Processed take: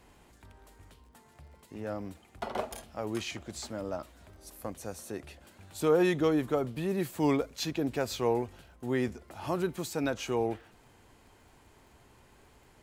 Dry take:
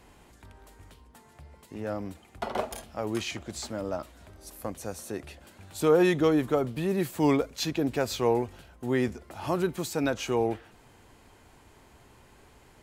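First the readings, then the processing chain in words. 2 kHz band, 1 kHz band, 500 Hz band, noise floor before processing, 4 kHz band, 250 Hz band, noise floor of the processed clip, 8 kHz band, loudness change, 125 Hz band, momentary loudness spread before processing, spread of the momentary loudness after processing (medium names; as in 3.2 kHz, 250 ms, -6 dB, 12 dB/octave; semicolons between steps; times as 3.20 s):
-3.5 dB, -3.5 dB, -3.5 dB, -57 dBFS, -3.5 dB, -3.5 dB, -61 dBFS, -3.5 dB, -3.5 dB, -3.5 dB, 15 LU, 15 LU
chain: crackle 57 per s -52 dBFS; trim -3.5 dB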